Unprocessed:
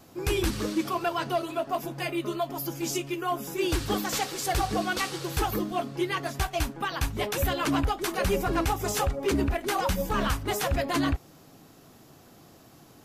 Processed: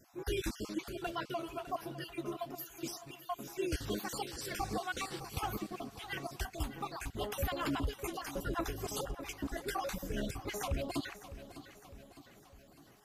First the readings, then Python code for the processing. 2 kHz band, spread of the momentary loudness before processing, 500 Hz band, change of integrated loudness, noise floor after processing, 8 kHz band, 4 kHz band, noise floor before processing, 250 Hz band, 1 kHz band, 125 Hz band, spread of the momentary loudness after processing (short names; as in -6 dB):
-10.5 dB, 4 LU, -11.0 dB, -11.0 dB, -60 dBFS, -10.5 dB, -10.0 dB, -54 dBFS, -10.5 dB, -11.0 dB, -11.0 dB, 12 LU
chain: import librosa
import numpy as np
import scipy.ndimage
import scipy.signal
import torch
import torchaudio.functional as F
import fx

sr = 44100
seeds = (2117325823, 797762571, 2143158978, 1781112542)

p1 = fx.spec_dropout(x, sr, seeds[0], share_pct=41)
p2 = p1 + fx.echo_feedback(p1, sr, ms=606, feedback_pct=54, wet_db=-14.0, dry=0)
y = F.gain(torch.from_numpy(p2), -8.0).numpy()